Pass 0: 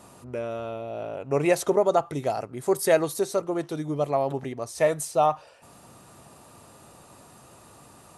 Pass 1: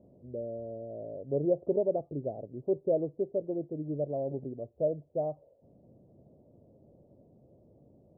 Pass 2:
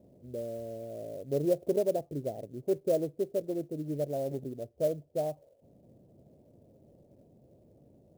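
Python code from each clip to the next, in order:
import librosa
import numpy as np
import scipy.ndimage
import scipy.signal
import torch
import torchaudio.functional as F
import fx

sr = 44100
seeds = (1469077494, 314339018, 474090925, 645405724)

y1 = scipy.signal.sosfilt(scipy.signal.ellip(4, 1.0, 70, 590.0, 'lowpass', fs=sr, output='sos'), x)
y1 = y1 * 10.0 ** (-5.0 / 20.0)
y2 = fx.clock_jitter(y1, sr, seeds[0], jitter_ms=0.022)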